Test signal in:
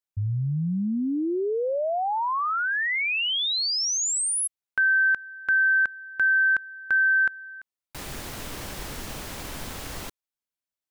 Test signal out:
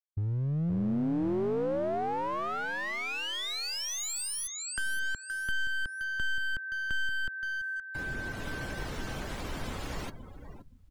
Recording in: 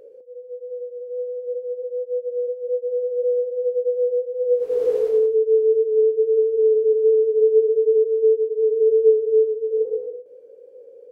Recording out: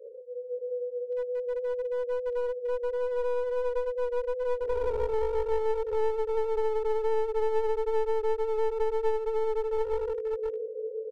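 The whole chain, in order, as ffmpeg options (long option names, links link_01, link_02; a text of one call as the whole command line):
ffmpeg -i in.wav -filter_complex "[0:a]aecho=1:1:522|1044|1566|2088|2610:0.398|0.163|0.0669|0.0274|0.0112,afftdn=noise_reduction=28:noise_floor=-42,aeval=exprs='clip(val(0),-1,0.0531)':channel_layout=same,acrossover=split=250|530[link_01][link_02][link_03];[link_01]acompressor=threshold=-31dB:ratio=2.5[link_04];[link_02]acompressor=threshold=-35dB:ratio=3[link_05];[link_03]acompressor=threshold=-38dB:ratio=2.5[link_06];[link_04][link_05][link_06]amix=inputs=3:normalize=0" out.wav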